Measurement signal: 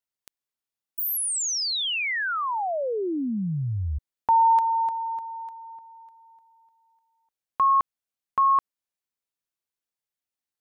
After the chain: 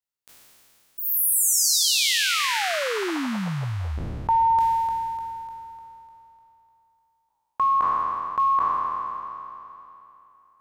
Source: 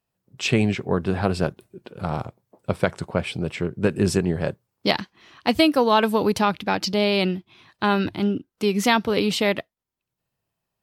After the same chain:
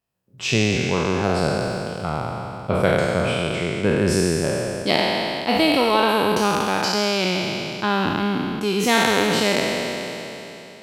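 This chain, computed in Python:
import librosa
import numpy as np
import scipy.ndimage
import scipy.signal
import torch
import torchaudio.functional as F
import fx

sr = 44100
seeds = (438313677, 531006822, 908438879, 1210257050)

p1 = fx.spec_trails(x, sr, decay_s=2.98)
p2 = fx.rider(p1, sr, range_db=4, speed_s=2.0)
p3 = p1 + F.gain(torch.from_numpy(p2), 0.0).numpy()
y = F.gain(torch.from_numpy(p3), -9.0).numpy()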